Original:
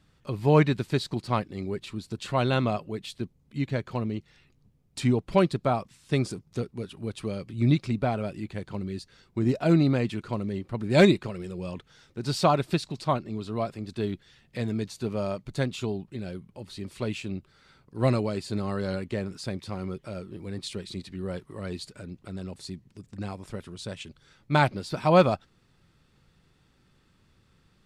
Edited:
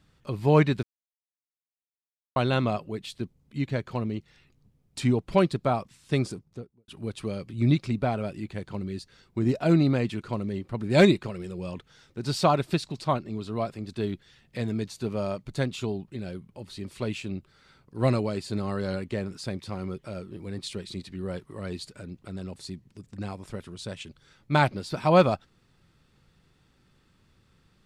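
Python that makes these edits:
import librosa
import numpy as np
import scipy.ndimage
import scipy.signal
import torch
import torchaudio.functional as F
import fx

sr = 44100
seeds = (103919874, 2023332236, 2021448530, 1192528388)

y = fx.studio_fade_out(x, sr, start_s=6.19, length_s=0.69)
y = fx.edit(y, sr, fx.silence(start_s=0.83, length_s=1.53), tone=tone)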